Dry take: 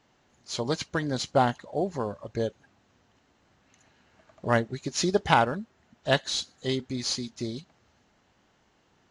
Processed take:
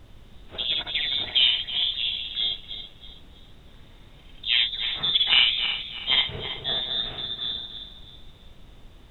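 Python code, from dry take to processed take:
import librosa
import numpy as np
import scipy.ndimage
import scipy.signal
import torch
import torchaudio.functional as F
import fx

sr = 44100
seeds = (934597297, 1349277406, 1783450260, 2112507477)

y = fx.reverse_delay_fb(x, sr, ms=162, feedback_pct=56, wet_db=-8)
y = fx.env_lowpass_down(y, sr, base_hz=2200.0, full_db=-20.0)
y = fx.freq_invert(y, sr, carrier_hz=3800)
y = fx.room_early_taps(y, sr, ms=(58, 79), db=(-3.0, -8.5))
y = fx.dmg_noise_colour(y, sr, seeds[0], colour='brown', level_db=-46.0)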